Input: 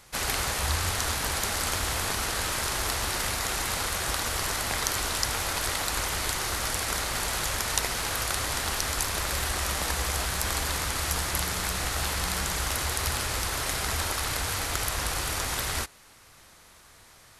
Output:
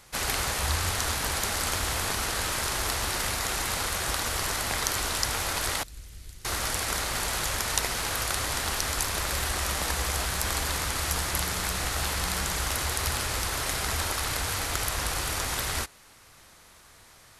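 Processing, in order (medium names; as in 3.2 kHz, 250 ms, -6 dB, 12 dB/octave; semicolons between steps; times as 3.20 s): 5.83–6.45 s: amplifier tone stack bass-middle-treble 10-0-1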